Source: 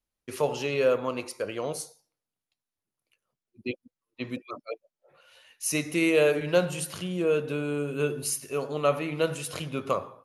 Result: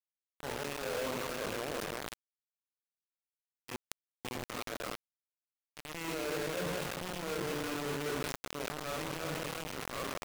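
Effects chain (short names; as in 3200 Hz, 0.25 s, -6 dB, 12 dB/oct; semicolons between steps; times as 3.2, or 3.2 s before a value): reverse delay 0.106 s, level -1 dB; reverse; compressor 8:1, threshold -34 dBFS, peak gain reduction 19.5 dB; reverse; crossover distortion -50.5 dBFS; HPF 53 Hz 6 dB/oct; limiter -31 dBFS, peak gain reduction 8.5 dB; LPF 1900 Hz 12 dB/oct; on a send: thinning echo 0.345 s, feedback 16%, high-pass 210 Hz, level -5 dB; on the sum: transient shaper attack -7 dB, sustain +7 dB; notches 60/120 Hz; companded quantiser 2-bit; sustainer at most 27 dB/s; gain -6.5 dB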